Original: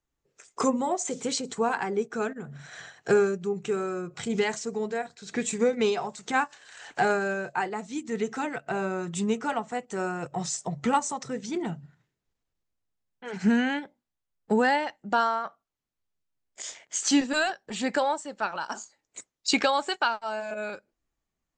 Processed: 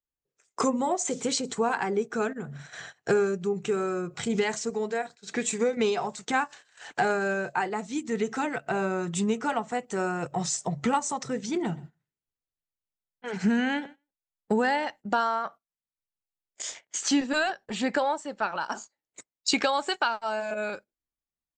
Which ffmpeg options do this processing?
-filter_complex "[0:a]asettb=1/sr,asplit=3[s0][s1][s2];[s0]atrim=end=4.704[s3];[s1]atrim=start=4.7:end=5.77,asetpts=PTS-STARTPTS,afade=t=in:d=0.004:c=qsin,afade=t=out:st=1.066:d=0.004:c=qsin,highpass=f=240:p=1[s4];[s2]atrim=start=5.766[s5];[s3][s4]acrossfade=d=0.004:c1=hsin:c2=qsin[s6];[s6][s5]acrossfade=d=0.004:c1=qsin:c2=hsin,asplit=3[s7][s8][s9];[s7]afade=t=out:st=11.63:d=0.02[s10];[s8]aecho=1:1:125|250:0.0794|0.0183,afade=t=in:st=11.63:d=0.02,afade=t=out:st=14.88:d=0.02[s11];[s9]afade=t=in:st=14.88:d=0.02[s12];[s10][s11][s12]amix=inputs=3:normalize=0,asettb=1/sr,asplit=3[s13][s14][s15];[s13]atrim=end=16.804[s16];[s14]atrim=start=16.8:end=19.33,asetpts=PTS-STARTPTS,afade=t=in:d=0.004:c=qsin,afade=t=out:st=2.526:d=0.004:c=qsin,highshelf=f=7700:g=-11[s17];[s15]atrim=start=19.326[s18];[s16][s17]acrossfade=d=0.004:c1=hsin:c2=qsin[s19];[s19][s18]acrossfade=d=0.004:c1=qsin:c2=hsin,agate=range=0.141:threshold=0.00562:ratio=16:detection=peak,acompressor=threshold=0.0501:ratio=2,volume=1.33"

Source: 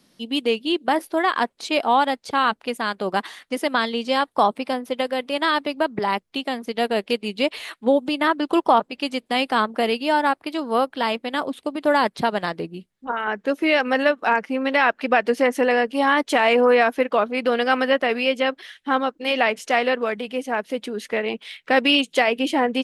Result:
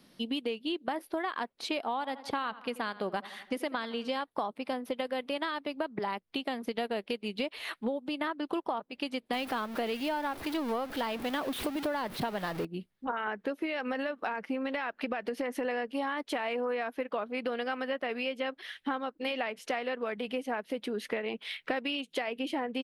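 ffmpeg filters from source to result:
-filter_complex "[0:a]asplit=3[s0][s1][s2];[s0]afade=t=out:st=1.98:d=0.02[s3];[s1]asplit=2[s4][s5];[s5]adelay=84,lowpass=f=3600:p=1,volume=0.119,asplit=2[s6][s7];[s7]adelay=84,lowpass=f=3600:p=1,volume=0.44,asplit=2[s8][s9];[s9]adelay=84,lowpass=f=3600:p=1,volume=0.44,asplit=2[s10][s11];[s11]adelay=84,lowpass=f=3600:p=1,volume=0.44[s12];[s4][s6][s8][s10][s12]amix=inputs=5:normalize=0,afade=t=in:st=1.98:d=0.02,afade=t=out:st=4.19:d=0.02[s13];[s2]afade=t=in:st=4.19:d=0.02[s14];[s3][s13][s14]amix=inputs=3:normalize=0,asettb=1/sr,asplit=3[s15][s16][s17];[s15]atrim=end=9.334[s18];[s16]atrim=start=9.33:end=12.65,asetpts=PTS-STARTPTS,afade=t=in:d=0.004:c=qsin,afade=t=out:st=3.316:d=0.004:c=qsin,aeval=exprs='val(0)+0.5*0.0562*sgn(val(0))':c=same[s19];[s17]atrim=start=12.646[s20];[s18][s19]acrossfade=d=0.004:c1=hsin:c2=qsin[s21];[s21][s20]acrossfade=d=0.004:c1=qsin:c2=hsin,asettb=1/sr,asplit=3[s22][s23][s24];[s22]atrim=end=13.654[s25];[s23]atrim=start=13.65:end=15.65,asetpts=PTS-STARTPTS,afade=t=in:d=0.004:c=qsin,afade=t=out:st=1.996:d=0.004:c=qsin,acompressor=threshold=0.126:ratio=6:attack=3.2:release=140:knee=1:detection=peak[s26];[s24]atrim=start=15.646[s27];[s25][s26]acrossfade=d=0.004:c1=hsin:c2=qsin[s28];[s28][s27]acrossfade=d=0.004:c1=qsin:c2=hsin,acompressor=threshold=0.0316:ratio=10,equalizer=f=7200:t=o:w=0.8:g=-8"

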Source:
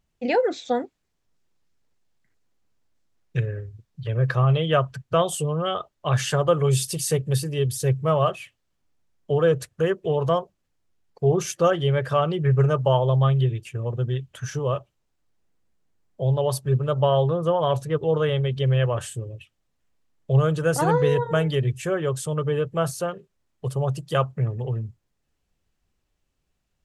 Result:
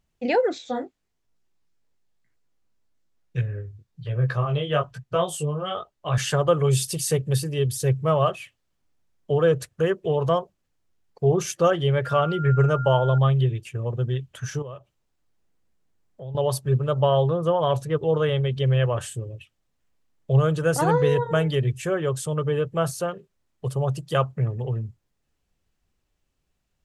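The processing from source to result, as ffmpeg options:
-filter_complex "[0:a]asettb=1/sr,asplit=3[s0][s1][s2];[s0]atrim=end=0.584[s3];[s1]atrim=start=0.58:end=6.18,asetpts=PTS-STARTPTS,afade=t=in:d=0.004:c=qsin,afade=t=out:st=5.596:d=0.004:c=qsin,flanger=delay=16:depth=4.9:speed=1.1[s4];[s2]atrim=start=6.176[s5];[s3][s4]acrossfade=d=0.004:c1=hsin:c2=qsin[s6];[s6][s5]acrossfade=d=0.004:c1=qsin:c2=hsin,asettb=1/sr,asplit=3[s7][s8][s9];[s7]atrim=end=12.054[s10];[s8]atrim=start=12.05:end=13.18,asetpts=PTS-STARTPTS,afade=t=in:d=0.004:c=qsin,afade=t=out:st=1.126:d=0.004:c=qsin,aeval=exprs='val(0)+0.0251*sin(2*PI*1400*n/s)':c=same[s11];[s9]atrim=start=13.176[s12];[s10][s11]acrossfade=d=0.004:c1=hsin:c2=qsin[s13];[s13][s12]acrossfade=d=0.004:c1=qsin:c2=hsin,asettb=1/sr,asplit=3[s14][s15][s16];[s14]atrim=end=14.624[s17];[s15]atrim=start=14.62:end=16.35,asetpts=PTS-STARTPTS,afade=t=in:d=0.004:c=qsin,afade=t=out:st=1.726:d=0.004:c=qsin,acompressor=threshold=0.00631:ratio=2:attack=3.2:release=140:knee=1:detection=peak[s18];[s16]atrim=start=16.346[s19];[s17][s18]acrossfade=d=0.004:c1=hsin:c2=qsin[s20];[s20][s19]acrossfade=d=0.004:c1=qsin:c2=hsin"

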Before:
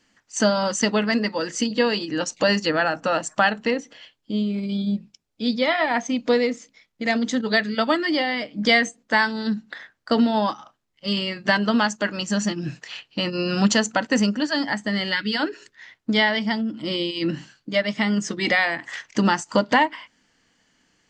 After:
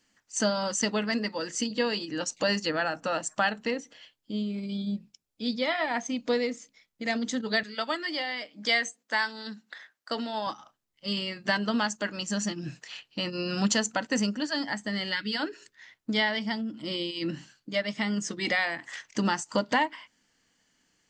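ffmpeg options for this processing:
-filter_complex "[0:a]asettb=1/sr,asplit=3[s0][s1][s2];[s0]atrim=end=7.634[s3];[s1]atrim=start=7.63:end=10.47,asetpts=PTS-STARTPTS,afade=t=in:d=0.004:c=qsin,afade=t=out:st=2.836:d=0.004:c=qsin,highpass=f=630:p=1[s4];[s2]atrim=start=10.466[s5];[s3][s4]acrossfade=d=0.004:c1=hsin:c2=qsin[s6];[s6][s5]acrossfade=d=0.004:c1=qsin:c2=hsin,highshelf=f=6900:g=10,volume=0.422"

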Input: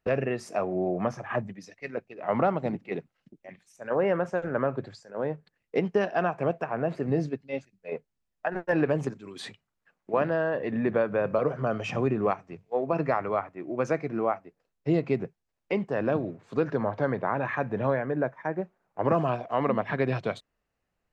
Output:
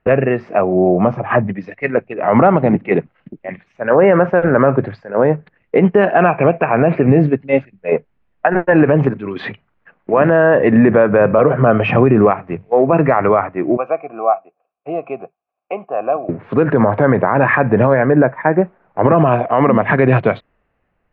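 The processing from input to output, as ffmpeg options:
-filter_complex "[0:a]asettb=1/sr,asplit=3[s0][s1][s2];[s0]atrim=end=0.614[s3];[s1]atrim=start=0.61:end=1.32,asetpts=PTS-STARTPTS,afade=t=in:d=0.004:c=qsin,afade=t=out:st=0.706:d=0.004:c=qsin,equalizer=f=1700:t=o:w=0.59:g=-11[s4];[s2]atrim=start=1.316[s5];[s3][s4]acrossfade=d=0.004:c1=hsin:c2=qsin[s6];[s6][s5]acrossfade=d=0.004:c1=qsin:c2=hsin,asettb=1/sr,asplit=3[s7][s8][s9];[s7]atrim=end=6.204[s10];[s8]atrim=start=6.2:end=7.19,asetpts=PTS-STARTPTS,afade=t=in:d=0.004:c=qsin,afade=t=out:st=0.986:d=0.004:c=qsin,equalizer=f=2400:w=7.9:g=13[s11];[s9]atrim=start=7.186[s12];[s10][s11]acrossfade=d=0.004:c1=hsin:c2=qsin[s13];[s13][s12]acrossfade=d=0.004:c1=qsin:c2=hsin,asettb=1/sr,asplit=3[s14][s15][s16];[s14]atrim=end=13.774[s17];[s15]atrim=start=13.77:end=16.29,asetpts=PTS-STARTPTS,afade=t=in:d=0.004:c=qsin,afade=t=out:st=2.516:d=0.004:c=qsin,asplit=3[s18][s19][s20];[s18]bandpass=f=730:t=q:w=8,volume=1[s21];[s19]bandpass=f=1090:t=q:w=8,volume=0.501[s22];[s20]bandpass=f=2440:t=q:w=8,volume=0.355[s23];[s21][s22][s23]amix=inputs=3:normalize=0[s24];[s16]atrim=start=16.286[s25];[s17][s24]acrossfade=d=0.004:c1=hsin:c2=qsin[s26];[s26][s25]acrossfade=d=0.004:c1=qsin:c2=hsin,lowpass=f=2500:w=0.5412,lowpass=f=2500:w=1.3066,dynaudnorm=f=300:g=7:m=1.88,alimiter=level_in=5.31:limit=0.891:release=50:level=0:latency=1,volume=0.891"

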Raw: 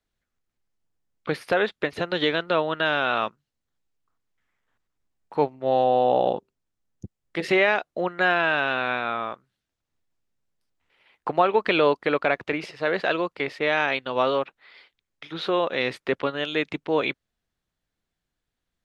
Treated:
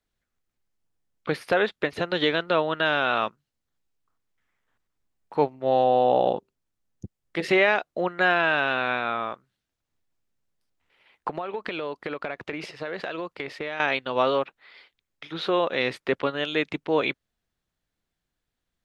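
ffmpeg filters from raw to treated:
-filter_complex "[0:a]asettb=1/sr,asplit=3[s0][s1][s2];[s0]atrim=end=11.284[s3];[s1]atrim=start=11.28:end=13.8,asetpts=PTS-STARTPTS,afade=t=in:d=0.004:c=qsin,afade=t=out:st=2.516:d=0.004:c=qsin,acompressor=threshold=0.0447:ratio=8:attack=3.2:release=140:knee=1:detection=peak[s4];[s2]atrim=start=13.796[s5];[s3][s4]acrossfade=d=0.004:c1=hsin:c2=qsin[s6];[s6][s5]acrossfade=d=0.004:c1=qsin:c2=hsin"

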